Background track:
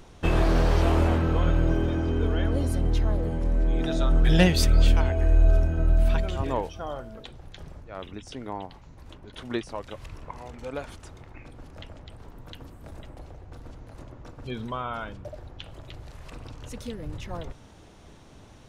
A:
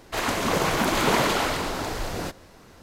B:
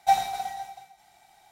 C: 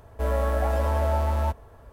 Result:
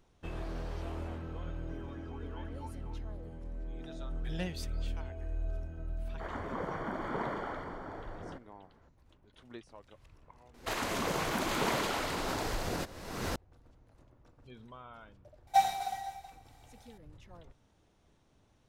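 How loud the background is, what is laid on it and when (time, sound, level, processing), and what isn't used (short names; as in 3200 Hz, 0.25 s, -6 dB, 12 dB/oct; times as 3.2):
background track -18 dB
1.49 add C -9 dB + vowel sweep i-u 3.9 Hz
6.07 add A -13.5 dB + polynomial smoothing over 41 samples
10.54 add A -10 dB + recorder AGC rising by 45 dB/s
15.47 add B -4.5 dB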